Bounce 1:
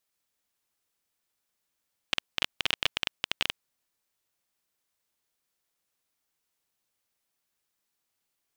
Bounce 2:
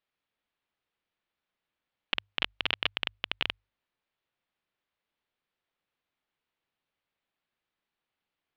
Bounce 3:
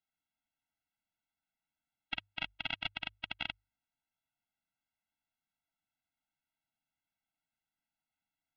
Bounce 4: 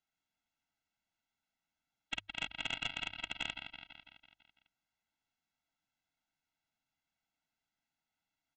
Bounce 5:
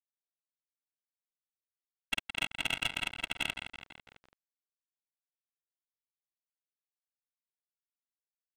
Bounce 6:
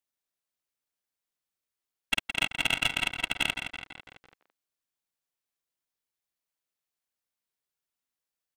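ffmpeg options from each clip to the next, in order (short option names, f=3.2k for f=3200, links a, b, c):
-af "lowpass=f=3.6k:w=0.5412,lowpass=f=3.6k:w=1.3066,bandreject=f=50:t=h:w=6,bandreject=f=100:t=h:w=6"
-af "afftfilt=real='re*eq(mod(floor(b*sr/1024/320),2),0)':imag='im*eq(mod(floor(b*sr/1024/320),2),0)':win_size=1024:overlap=0.75,volume=-4dB"
-af "aecho=1:1:166|332|498|664|830|996|1162:0.299|0.173|0.1|0.0582|0.0338|0.0196|0.0114,aresample=16000,asoftclip=type=tanh:threshold=-28dB,aresample=44100,volume=2.5dB"
-af "acrusher=bits=7:mix=0:aa=0.000001,adynamicsmooth=sensitivity=7.5:basefreq=2k,volume=6dB"
-filter_complex "[0:a]asplit=2[a][b];[b]adelay=170,highpass=300,lowpass=3.4k,asoftclip=type=hard:threshold=-28.5dB,volume=-10dB[c];[a][c]amix=inputs=2:normalize=0,volume=6dB"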